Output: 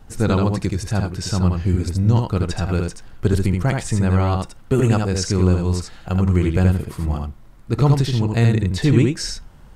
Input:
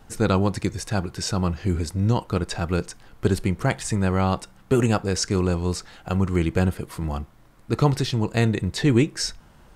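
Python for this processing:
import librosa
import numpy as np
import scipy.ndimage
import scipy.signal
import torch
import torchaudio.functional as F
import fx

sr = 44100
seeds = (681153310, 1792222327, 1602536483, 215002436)

y = fx.low_shelf(x, sr, hz=150.0, db=9.0)
y = y + 10.0 ** (-3.5 / 20.0) * np.pad(y, (int(77 * sr / 1000.0), 0))[:len(y)]
y = y * librosa.db_to_amplitude(-1.0)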